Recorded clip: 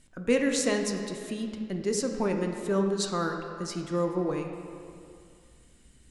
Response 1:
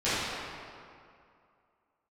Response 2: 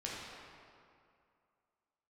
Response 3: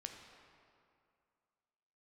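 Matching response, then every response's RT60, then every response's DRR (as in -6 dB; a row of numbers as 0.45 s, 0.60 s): 3; 2.4 s, 2.4 s, 2.4 s; -15.5 dB, -5.5 dB, 3.0 dB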